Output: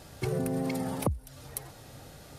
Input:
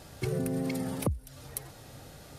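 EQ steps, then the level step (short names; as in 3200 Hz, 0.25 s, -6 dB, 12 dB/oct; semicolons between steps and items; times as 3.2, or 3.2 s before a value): dynamic EQ 850 Hz, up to +6 dB, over -54 dBFS, Q 1.4; 0.0 dB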